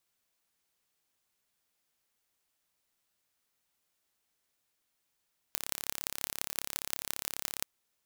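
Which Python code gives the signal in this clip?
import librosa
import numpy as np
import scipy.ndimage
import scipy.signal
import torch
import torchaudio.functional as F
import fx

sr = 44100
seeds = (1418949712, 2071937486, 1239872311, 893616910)

y = fx.impulse_train(sr, length_s=2.1, per_s=34.7, accent_every=6, level_db=-3.5)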